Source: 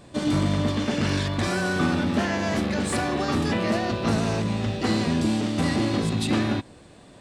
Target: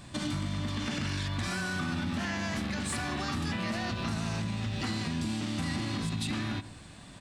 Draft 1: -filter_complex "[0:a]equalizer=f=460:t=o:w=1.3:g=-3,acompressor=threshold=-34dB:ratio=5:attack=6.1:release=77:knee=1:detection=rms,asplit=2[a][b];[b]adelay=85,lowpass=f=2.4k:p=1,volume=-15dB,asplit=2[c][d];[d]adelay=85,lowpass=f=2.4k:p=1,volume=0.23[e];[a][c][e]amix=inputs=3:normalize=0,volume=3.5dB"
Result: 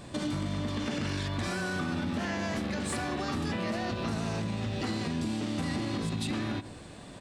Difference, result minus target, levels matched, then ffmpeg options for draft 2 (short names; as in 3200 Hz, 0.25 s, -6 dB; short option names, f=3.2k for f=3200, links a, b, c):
500 Hz band +5.0 dB
-filter_complex "[0:a]equalizer=f=460:t=o:w=1.3:g=-13.5,acompressor=threshold=-34dB:ratio=5:attack=6.1:release=77:knee=1:detection=rms,asplit=2[a][b];[b]adelay=85,lowpass=f=2.4k:p=1,volume=-15dB,asplit=2[c][d];[d]adelay=85,lowpass=f=2.4k:p=1,volume=0.23[e];[a][c][e]amix=inputs=3:normalize=0,volume=3.5dB"